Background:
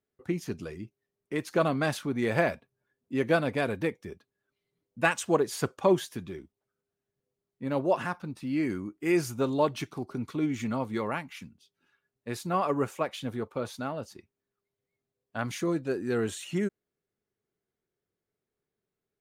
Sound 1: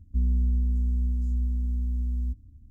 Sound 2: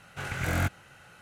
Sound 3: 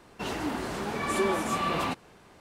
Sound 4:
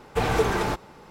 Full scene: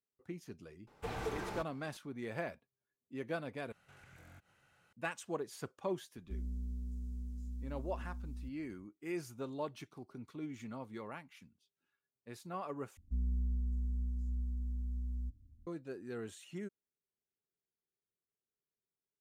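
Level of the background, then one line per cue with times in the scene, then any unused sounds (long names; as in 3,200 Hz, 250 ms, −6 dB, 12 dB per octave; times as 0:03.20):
background −14.5 dB
0:00.87: mix in 4 −17 dB
0:03.72: overwrite with 2 −17 dB + downward compressor 3 to 1, threshold −42 dBFS
0:06.16: mix in 1 −6 dB + low-shelf EQ 290 Hz −11.5 dB
0:12.97: overwrite with 1 −11 dB
not used: 3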